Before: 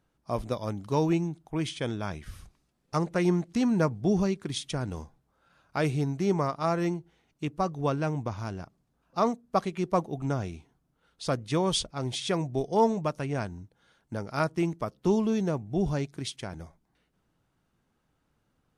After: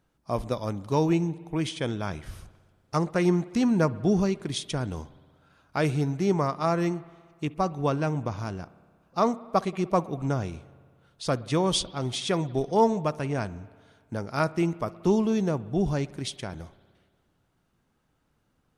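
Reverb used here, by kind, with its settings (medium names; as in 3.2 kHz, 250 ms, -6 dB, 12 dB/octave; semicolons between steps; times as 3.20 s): spring tank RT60 1.8 s, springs 59 ms, chirp 20 ms, DRR 18.5 dB; trim +2 dB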